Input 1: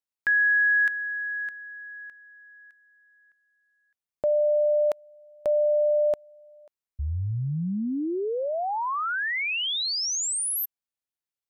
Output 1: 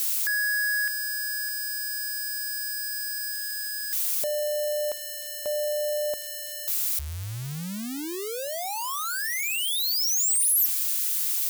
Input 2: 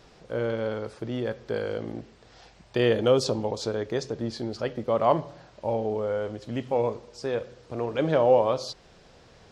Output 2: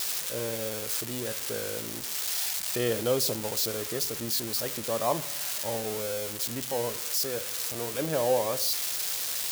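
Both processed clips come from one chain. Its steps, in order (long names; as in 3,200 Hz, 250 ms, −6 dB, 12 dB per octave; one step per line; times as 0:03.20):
spike at every zero crossing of −14 dBFS
level −6 dB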